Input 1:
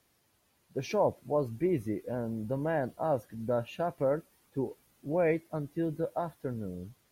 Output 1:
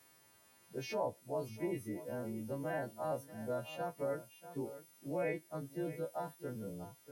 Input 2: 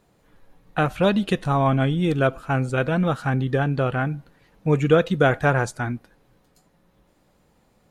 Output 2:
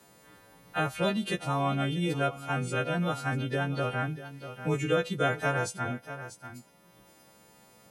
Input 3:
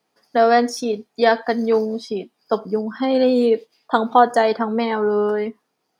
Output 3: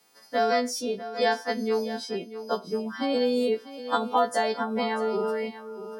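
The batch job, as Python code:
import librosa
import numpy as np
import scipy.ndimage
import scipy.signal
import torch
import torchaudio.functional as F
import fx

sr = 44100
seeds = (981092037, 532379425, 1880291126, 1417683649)

y = fx.freq_snap(x, sr, grid_st=2)
y = scipy.signal.sosfilt(scipy.signal.butter(2, 86.0, 'highpass', fs=sr, output='sos'), y)
y = y + 10.0 ** (-16.5 / 20.0) * np.pad(y, (int(640 * sr / 1000.0), 0))[:len(y)]
y = fx.band_squash(y, sr, depth_pct=40)
y = F.gain(torch.from_numpy(y), -8.0).numpy()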